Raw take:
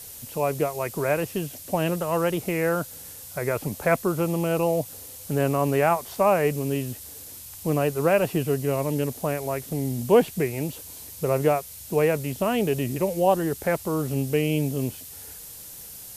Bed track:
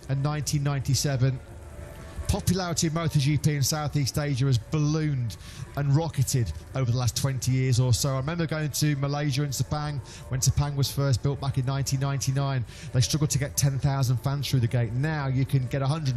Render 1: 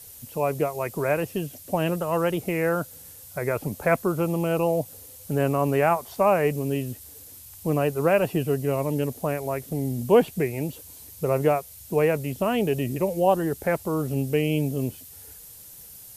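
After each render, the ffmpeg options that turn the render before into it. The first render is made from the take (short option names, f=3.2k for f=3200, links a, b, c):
-af "afftdn=nr=6:nf=-42"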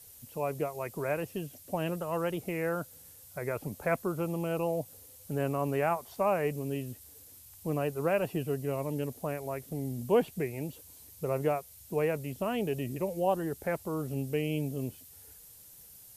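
-af "volume=-8dB"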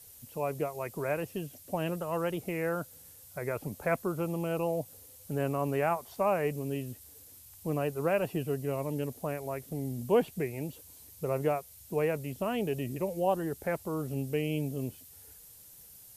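-af anull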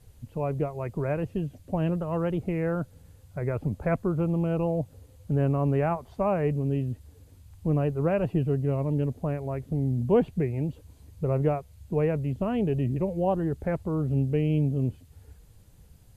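-af "aemphasis=mode=reproduction:type=riaa,bandreject=f=5.5k:w=12"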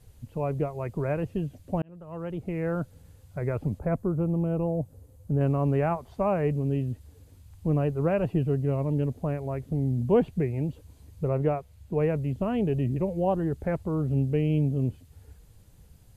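-filter_complex "[0:a]asettb=1/sr,asplit=3[a][b][c];[a]atrim=end=3.794[d];[b]atrim=start=3.79:end=5.41,asetpts=PTS-STARTPTS,afade=t=in:d=0.004:c=qsin,afade=t=out:st=1.616:d=0.004:c=qsin,equalizer=f=2.9k:w=0.45:g=-10[e];[c]atrim=start=5.406[f];[d][e]acrossfade=d=0.004:c1=hsin:c2=qsin[g];[g][f]acrossfade=d=0.004:c1=qsin:c2=hsin,asettb=1/sr,asplit=3[h][i][j];[h]atrim=end=11.284[k];[i]atrim=start=11.28:end=12.01,asetpts=PTS-STARTPTS,afade=t=in:d=0.004:c=qsin,afade=t=out:st=0.726:d=0.004:c=qsin,bass=f=250:g=-2,treble=f=4k:g=-4[l];[j]atrim=start=12.006[m];[k][l]acrossfade=d=0.004:c1=hsin:c2=qsin[n];[n][m]acrossfade=d=0.004:c1=qsin:c2=hsin,asplit=2[o][p];[o]atrim=end=1.82,asetpts=PTS-STARTPTS,afade=t=out:st=1.816:d=0.004:c=hsin[q];[p]atrim=start=1.82,asetpts=PTS-STARTPTS,afade=t=in:d=0.98[r];[q][r]concat=n=2:v=0:a=1"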